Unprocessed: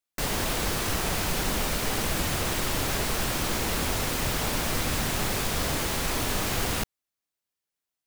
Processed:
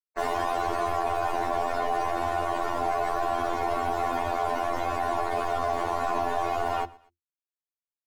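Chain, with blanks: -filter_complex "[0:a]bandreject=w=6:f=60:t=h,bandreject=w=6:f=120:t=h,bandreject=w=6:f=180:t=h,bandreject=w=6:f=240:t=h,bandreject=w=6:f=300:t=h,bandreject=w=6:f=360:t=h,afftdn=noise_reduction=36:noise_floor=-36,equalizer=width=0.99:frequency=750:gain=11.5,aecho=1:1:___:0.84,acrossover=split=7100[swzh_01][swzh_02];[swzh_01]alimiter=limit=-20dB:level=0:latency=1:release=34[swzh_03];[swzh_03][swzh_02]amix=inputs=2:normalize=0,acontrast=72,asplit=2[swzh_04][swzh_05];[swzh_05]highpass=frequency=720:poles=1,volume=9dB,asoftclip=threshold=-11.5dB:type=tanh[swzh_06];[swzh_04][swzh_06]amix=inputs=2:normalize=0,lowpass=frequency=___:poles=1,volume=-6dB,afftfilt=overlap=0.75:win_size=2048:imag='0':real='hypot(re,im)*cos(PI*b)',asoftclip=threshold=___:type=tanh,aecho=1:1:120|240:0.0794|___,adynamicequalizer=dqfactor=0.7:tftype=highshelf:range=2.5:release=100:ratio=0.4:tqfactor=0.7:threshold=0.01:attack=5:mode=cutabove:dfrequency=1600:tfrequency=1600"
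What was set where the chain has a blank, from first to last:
2.8, 2300, -14dB, 0.023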